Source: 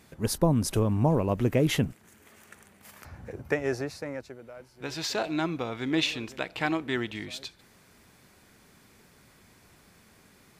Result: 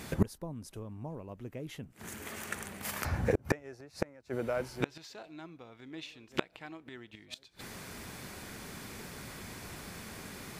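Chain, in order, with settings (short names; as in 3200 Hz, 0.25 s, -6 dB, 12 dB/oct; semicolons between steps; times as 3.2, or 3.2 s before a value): flipped gate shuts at -27 dBFS, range -31 dB; gain +12.5 dB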